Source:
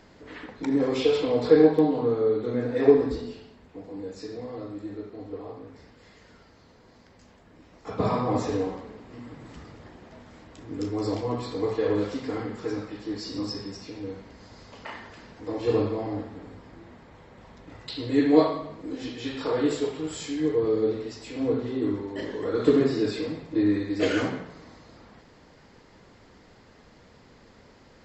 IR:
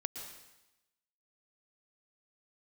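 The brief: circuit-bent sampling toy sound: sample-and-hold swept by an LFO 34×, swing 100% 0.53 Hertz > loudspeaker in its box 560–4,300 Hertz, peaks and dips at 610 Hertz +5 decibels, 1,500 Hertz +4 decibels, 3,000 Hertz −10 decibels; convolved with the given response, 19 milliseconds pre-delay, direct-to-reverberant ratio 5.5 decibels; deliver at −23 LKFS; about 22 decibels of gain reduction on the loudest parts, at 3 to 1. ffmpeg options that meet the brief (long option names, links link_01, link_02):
-filter_complex "[0:a]acompressor=threshold=-43dB:ratio=3,asplit=2[link_01][link_02];[1:a]atrim=start_sample=2205,adelay=19[link_03];[link_02][link_03]afir=irnorm=-1:irlink=0,volume=-5.5dB[link_04];[link_01][link_04]amix=inputs=2:normalize=0,acrusher=samples=34:mix=1:aa=0.000001:lfo=1:lforange=34:lforate=0.53,highpass=560,equalizer=frequency=610:width_type=q:width=4:gain=5,equalizer=frequency=1500:width_type=q:width=4:gain=4,equalizer=frequency=3000:width_type=q:width=4:gain=-10,lowpass=frequency=4300:width=0.5412,lowpass=frequency=4300:width=1.3066,volume=22dB"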